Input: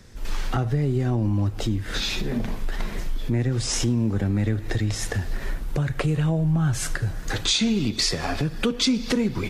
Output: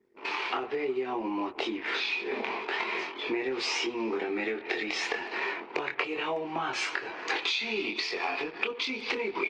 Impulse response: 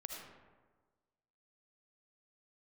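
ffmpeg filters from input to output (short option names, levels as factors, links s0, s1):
-filter_complex "[0:a]asettb=1/sr,asplit=3[s0][s1][s2];[s0]atrim=end=4.214[s3];[s1]atrim=start=4.21:end=5.01,asetpts=PTS-STARTPTS,afade=t=in:d=0.004:c=qsin,afade=t=out:st=0.796:d=0.004:c=qsin,bandreject=f=1000:w=5.2[s4];[s2]atrim=start=5.006[s5];[s3][s4]acrossfade=d=0.004:c1=hsin:c2=qsin[s6];[s6][s5]acrossfade=d=0.004:c1=qsin:c2=hsin,anlmdn=0.158,highshelf=f=2300:g=7,asplit=2[s7][s8];[s8]adelay=23,volume=0.794[s9];[s7][s9]amix=inputs=2:normalize=0,asplit=2[s10][s11];[s11]alimiter=limit=0.266:level=0:latency=1:release=421,volume=0.75[s12];[s10][s12]amix=inputs=2:normalize=0,highpass=f=370:w=0.5412,highpass=f=370:w=1.3066,equalizer=f=390:t=q:w=4:g=6,equalizer=f=560:t=q:w=4:g=-8,equalizer=f=950:t=q:w=4:g=8,equalizer=f=1600:t=q:w=4:g=-5,equalizer=f=2400:t=q:w=4:g=9,equalizer=f=3600:t=q:w=4:g=-5,lowpass=f=4000:w=0.5412,lowpass=f=4000:w=1.3066,acompressor=threshold=0.0398:ratio=6,asplit=2[s13][s14];[s14]adelay=370,highpass=300,lowpass=3400,asoftclip=type=hard:threshold=0.075,volume=0.0631[s15];[s13][s15]amix=inputs=2:normalize=0" -ar 48000 -c:a libopus -b:a 32k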